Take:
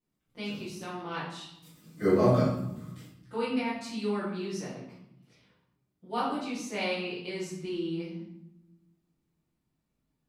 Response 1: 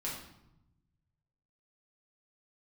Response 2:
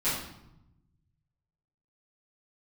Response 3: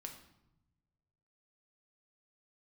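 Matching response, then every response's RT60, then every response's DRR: 2; 0.85, 0.85, 0.90 s; -6.0, -15.0, 3.0 dB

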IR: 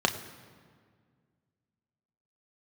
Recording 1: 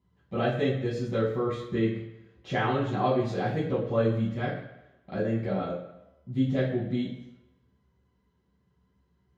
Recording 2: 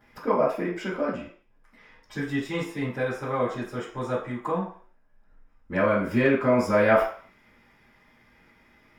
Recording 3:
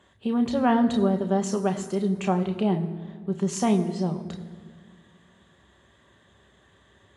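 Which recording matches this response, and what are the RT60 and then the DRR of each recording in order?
3; 0.90, 0.50, 1.9 s; -8.0, -13.0, 4.5 dB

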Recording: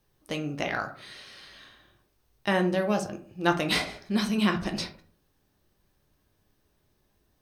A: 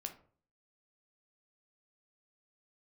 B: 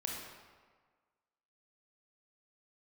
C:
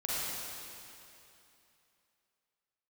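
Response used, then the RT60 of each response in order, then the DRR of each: A; 0.45, 1.5, 2.8 s; 4.5, -1.5, -8.5 dB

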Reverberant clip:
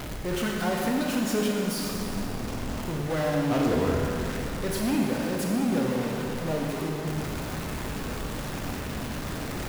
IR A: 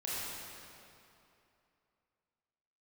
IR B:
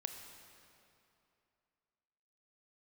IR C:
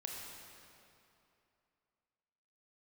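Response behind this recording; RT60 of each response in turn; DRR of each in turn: C; 2.8, 2.7, 2.8 s; -8.5, 5.0, -1.5 dB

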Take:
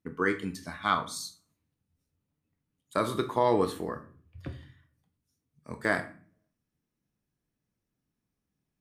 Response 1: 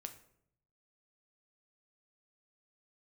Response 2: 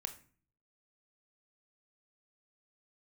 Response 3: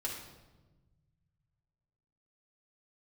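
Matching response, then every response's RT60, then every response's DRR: 2; 0.70, 0.45, 1.2 s; 6.5, 7.5, -3.5 dB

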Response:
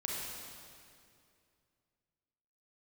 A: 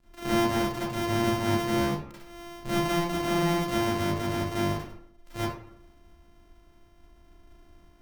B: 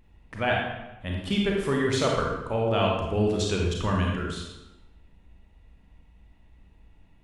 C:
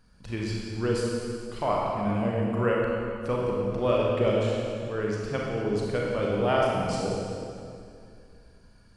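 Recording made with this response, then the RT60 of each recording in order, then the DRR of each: C; 0.65, 1.0, 2.4 s; -11.0, -1.5, -3.5 dB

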